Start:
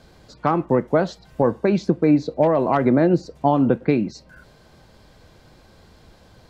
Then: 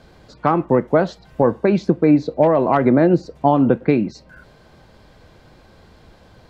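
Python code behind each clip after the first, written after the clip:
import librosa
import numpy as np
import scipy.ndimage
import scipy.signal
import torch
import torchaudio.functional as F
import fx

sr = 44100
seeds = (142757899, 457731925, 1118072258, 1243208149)

y = fx.bass_treble(x, sr, bass_db=-1, treble_db=-6)
y = F.gain(torch.from_numpy(y), 3.0).numpy()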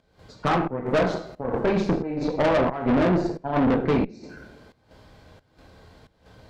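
y = fx.rev_double_slope(x, sr, seeds[0], early_s=0.6, late_s=1.7, knee_db=-18, drr_db=0.5)
y = fx.volume_shaper(y, sr, bpm=89, per_beat=1, depth_db=-17, release_ms=187.0, shape='slow start')
y = fx.tube_stage(y, sr, drive_db=17.0, bias=0.8)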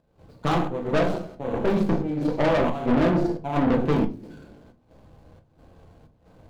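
y = scipy.ndimage.median_filter(x, 25, mode='constant')
y = fx.room_shoebox(y, sr, seeds[1], volume_m3=120.0, walls='furnished', distance_m=0.72)
y = F.gain(torch.from_numpy(y), -1.5).numpy()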